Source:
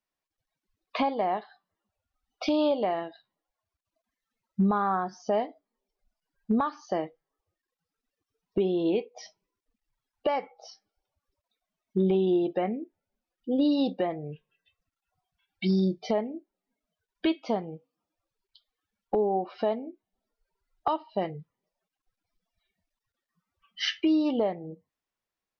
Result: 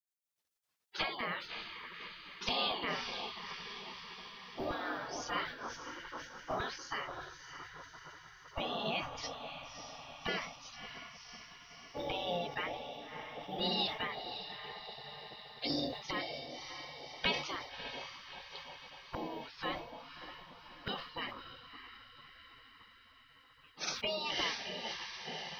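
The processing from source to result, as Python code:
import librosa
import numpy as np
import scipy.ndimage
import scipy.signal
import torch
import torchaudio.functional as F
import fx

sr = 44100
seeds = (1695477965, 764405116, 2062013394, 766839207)

y = fx.echo_diffused(x, sr, ms=610, feedback_pct=63, wet_db=-9)
y = fx.spec_gate(y, sr, threshold_db=-20, keep='weak')
y = fx.sustainer(y, sr, db_per_s=88.0)
y = F.gain(torch.from_numpy(y), 6.0).numpy()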